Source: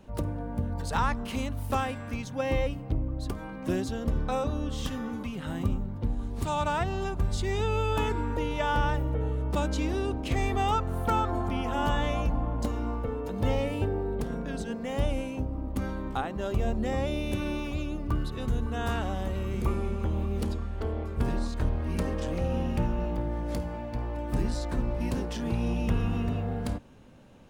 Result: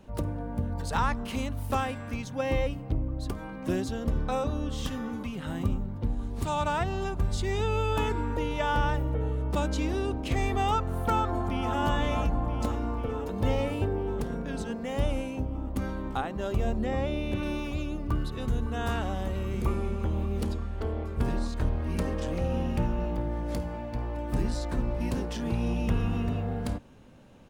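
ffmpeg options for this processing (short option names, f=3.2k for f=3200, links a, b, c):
-filter_complex "[0:a]asplit=2[a][b];[b]afade=t=in:st=11.13:d=0.01,afade=t=out:st=11.77:d=0.01,aecho=0:1:490|980|1470|1960|2450|2940|3430|3920|4410|4900|5390|5880:0.375837|0.281878|0.211409|0.158556|0.118917|0.089188|0.066891|0.0501682|0.0376262|0.0282196|0.0211647|0.0158735[c];[a][c]amix=inputs=2:normalize=0,asettb=1/sr,asplit=3[d][e][f];[d]atrim=end=16.794[g];[e]atrim=start=16.79:end=17.43,asetpts=PTS-STARTPTS,afade=t=in:d=0.004:c=qsin,afade=t=out:st=0.636:d=0.004:c=qsin,acrossover=split=3900[h][i];[i]acompressor=threshold=-57dB:ratio=4:attack=1:release=60[j];[h][j]amix=inputs=2:normalize=0[k];[f]atrim=start=17.426[l];[g][k]acrossfade=d=0.004:c1=hsin:c2=qsin[m];[m][l]acrossfade=d=0.004:c1=qsin:c2=hsin"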